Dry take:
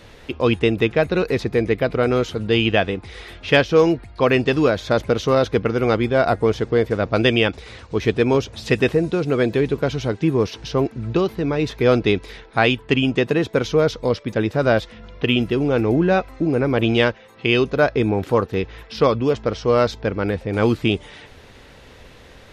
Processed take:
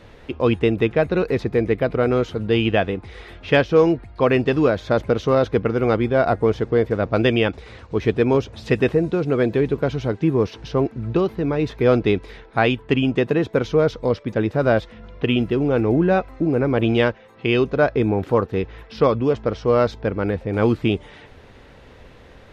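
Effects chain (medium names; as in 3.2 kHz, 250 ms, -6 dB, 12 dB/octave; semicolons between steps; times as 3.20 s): treble shelf 3.1 kHz -10.5 dB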